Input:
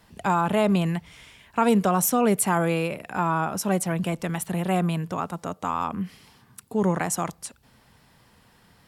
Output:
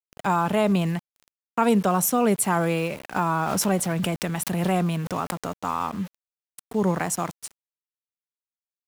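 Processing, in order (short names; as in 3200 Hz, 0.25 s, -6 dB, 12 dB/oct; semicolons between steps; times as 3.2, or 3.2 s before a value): sample gate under -38 dBFS; 3.16–5.53 backwards sustainer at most 22 dB/s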